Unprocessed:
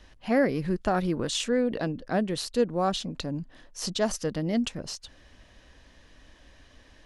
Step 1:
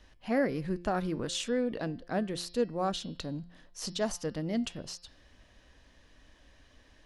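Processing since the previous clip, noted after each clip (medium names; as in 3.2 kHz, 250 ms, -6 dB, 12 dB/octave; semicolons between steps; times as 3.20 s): de-hum 174.5 Hz, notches 32; trim -5 dB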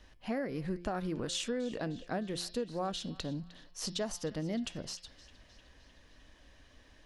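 compression 10:1, threshold -31 dBFS, peak gain reduction 9 dB; band-passed feedback delay 307 ms, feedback 67%, band-pass 3 kHz, level -16.5 dB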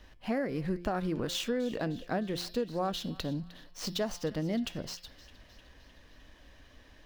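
median filter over 5 samples; trim +3.5 dB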